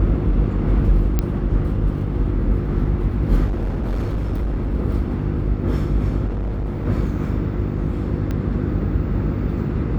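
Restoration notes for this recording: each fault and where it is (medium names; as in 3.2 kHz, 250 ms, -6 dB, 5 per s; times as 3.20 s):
hum 50 Hz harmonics 7 -24 dBFS
1.19 s: pop -7 dBFS
3.46–4.74 s: clipped -18.5 dBFS
6.26–6.87 s: clipped -20.5 dBFS
8.31 s: pop -14 dBFS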